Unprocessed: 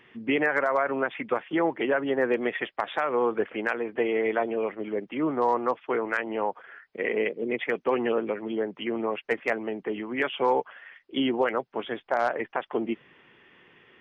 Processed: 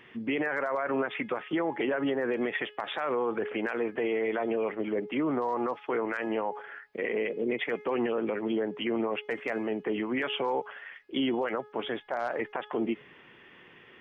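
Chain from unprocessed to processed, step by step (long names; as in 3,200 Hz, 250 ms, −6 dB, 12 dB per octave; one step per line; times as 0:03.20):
hum removal 420.9 Hz, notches 36
brickwall limiter −23.5 dBFS, peak gain reduction 10.5 dB
level +2.5 dB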